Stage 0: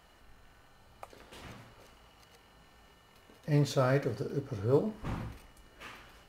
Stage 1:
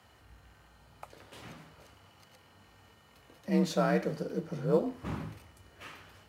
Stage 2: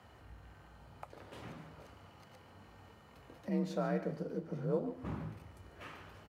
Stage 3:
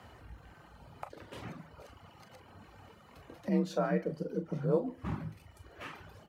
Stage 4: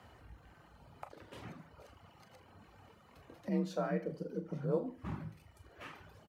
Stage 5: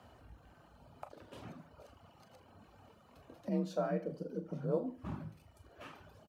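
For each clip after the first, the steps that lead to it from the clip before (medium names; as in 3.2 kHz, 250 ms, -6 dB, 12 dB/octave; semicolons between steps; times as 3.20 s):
frequency shift +43 Hz
treble shelf 2.2 kHz -10 dB; compression 1.5:1, threshold -53 dBFS, peak gain reduction 11.5 dB; on a send: delay 144 ms -13.5 dB; on the sum: trim +3.5 dB
reverb removal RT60 1.2 s; on a send at -15.5 dB: harmonic-percussive split percussive +7 dB + reverberation, pre-delay 30 ms; on the sum: trim +5.5 dB
delay 80 ms -16.5 dB; trim -4.5 dB
graphic EQ with 31 bands 250 Hz +4 dB, 630 Hz +5 dB, 2 kHz -7 dB; trim -1.5 dB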